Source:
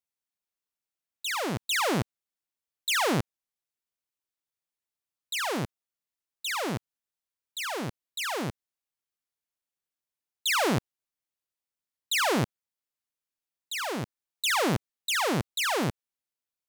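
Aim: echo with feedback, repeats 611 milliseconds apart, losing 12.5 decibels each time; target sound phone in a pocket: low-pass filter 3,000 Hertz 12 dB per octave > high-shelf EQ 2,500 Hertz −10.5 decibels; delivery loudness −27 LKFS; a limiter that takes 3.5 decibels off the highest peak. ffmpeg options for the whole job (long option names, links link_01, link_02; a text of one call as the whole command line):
ffmpeg -i in.wav -af "alimiter=limit=-23dB:level=0:latency=1,lowpass=3000,highshelf=frequency=2500:gain=-10.5,aecho=1:1:611|1222|1833:0.237|0.0569|0.0137,volume=8dB" out.wav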